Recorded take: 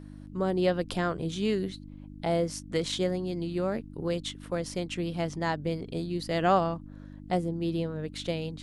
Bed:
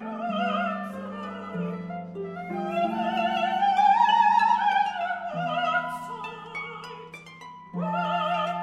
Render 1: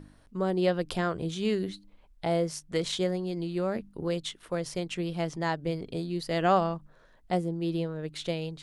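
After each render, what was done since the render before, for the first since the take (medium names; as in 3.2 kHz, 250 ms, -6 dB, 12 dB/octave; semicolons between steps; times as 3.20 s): de-hum 50 Hz, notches 6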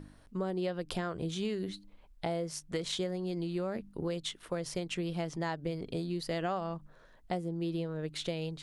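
compression 6:1, threshold -31 dBFS, peak gain reduction 12.5 dB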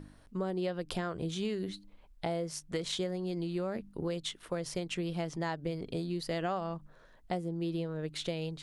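no audible change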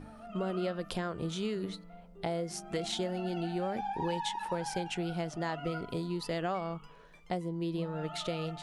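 add bed -18 dB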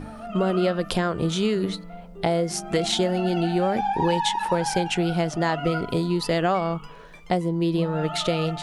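trim +11.5 dB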